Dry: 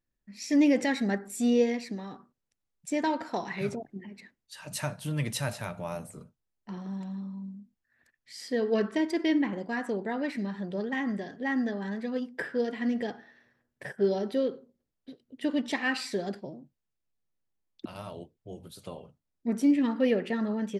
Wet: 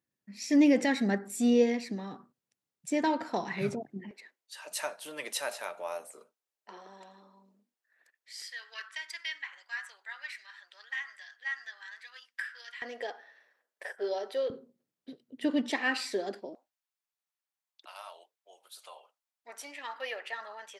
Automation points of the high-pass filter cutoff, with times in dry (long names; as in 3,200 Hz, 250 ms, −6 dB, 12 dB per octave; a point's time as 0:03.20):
high-pass filter 24 dB per octave
110 Hz
from 0:04.11 410 Hz
from 0:08.42 1,400 Hz
from 0:12.82 490 Hz
from 0:14.50 130 Hz
from 0:15.70 280 Hz
from 0:16.55 760 Hz